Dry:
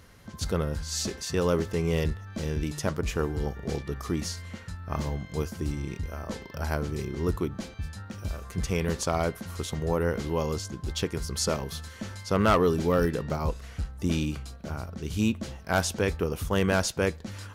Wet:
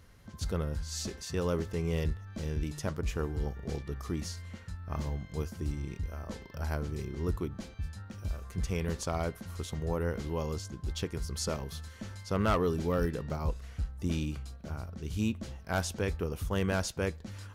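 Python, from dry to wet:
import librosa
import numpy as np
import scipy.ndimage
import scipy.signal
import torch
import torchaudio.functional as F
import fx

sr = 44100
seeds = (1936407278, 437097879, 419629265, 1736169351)

y = fx.low_shelf(x, sr, hz=93.0, db=8.0)
y = y * librosa.db_to_amplitude(-7.0)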